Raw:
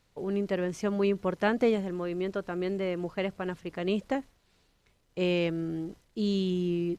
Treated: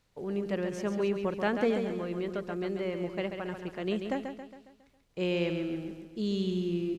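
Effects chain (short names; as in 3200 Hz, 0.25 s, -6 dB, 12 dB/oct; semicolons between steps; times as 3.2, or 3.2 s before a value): feedback echo 0.137 s, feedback 50%, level -7 dB; gain -3 dB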